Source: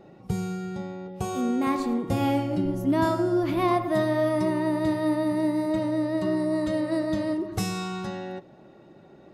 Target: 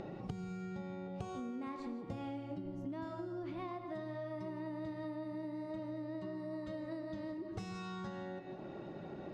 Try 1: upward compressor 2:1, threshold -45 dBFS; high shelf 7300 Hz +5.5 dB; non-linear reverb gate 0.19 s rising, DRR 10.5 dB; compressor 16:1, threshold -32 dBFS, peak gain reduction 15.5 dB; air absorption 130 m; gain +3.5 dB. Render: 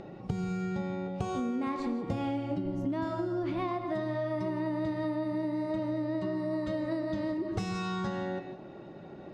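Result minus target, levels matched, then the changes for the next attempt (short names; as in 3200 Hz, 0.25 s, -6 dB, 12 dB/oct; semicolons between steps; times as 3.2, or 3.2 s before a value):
compressor: peak gain reduction -10.5 dB
change: compressor 16:1, threshold -43 dBFS, peak gain reduction 25.5 dB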